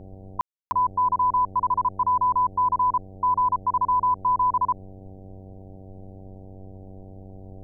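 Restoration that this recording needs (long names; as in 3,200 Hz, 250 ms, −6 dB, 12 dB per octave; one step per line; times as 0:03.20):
hum removal 95.6 Hz, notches 8
ambience match 0:00.41–0:00.71
broadband denoise 27 dB, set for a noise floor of −43 dBFS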